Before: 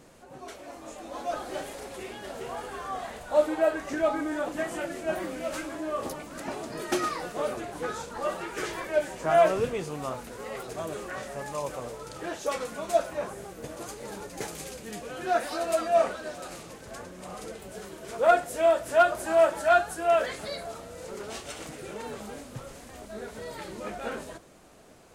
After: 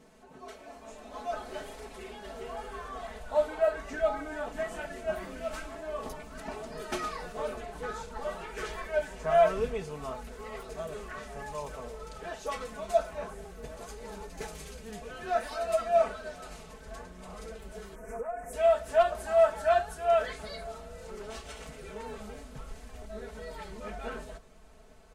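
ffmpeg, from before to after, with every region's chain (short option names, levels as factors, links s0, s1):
-filter_complex "[0:a]asettb=1/sr,asplit=3[s0][s1][s2];[s0]atrim=end=17.954[s3];[s1]atrim=start=17.95:end=18.53,asetpts=PTS-STARTPTS,afade=t=in:d=0.004:c=qsin,afade=t=out:st=0.576:d=0.004:c=qsin,asuperstop=centerf=3800:order=4:qfactor=0.77,acompressor=threshold=0.0282:ratio=8:attack=3.2:release=140:knee=1:detection=peak,aecho=1:1:4.1:0.54,atrim=end_sample=25578[s4];[s2]atrim=start=18.526[s5];[s3][s4]acrossfade=d=0.004:c1=hsin:c2=qsin[s6];[s6][s5]acrossfade=d=0.004:c1=qsin:c2=hsin,highshelf=f=5900:g=-6.5,aecho=1:1:4.6:0.92,asubboost=boost=5:cutoff=91,volume=0.501"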